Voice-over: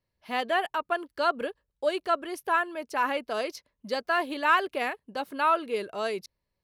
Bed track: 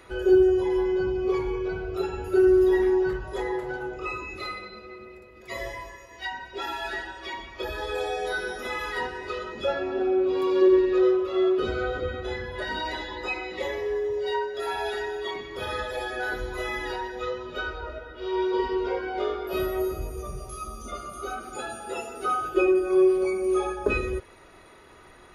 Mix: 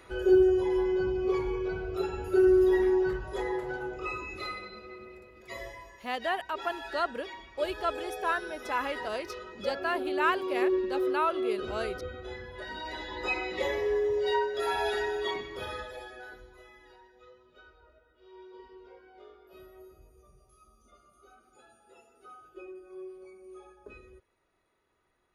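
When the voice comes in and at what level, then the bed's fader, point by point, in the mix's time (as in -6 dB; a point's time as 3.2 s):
5.75 s, -4.5 dB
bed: 5.28 s -3 dB
5.75 s -9 dB
12.79 s -9 dB
13.32 s 0 dB
15.32 s 0 dB
16.73 s -24.5 dB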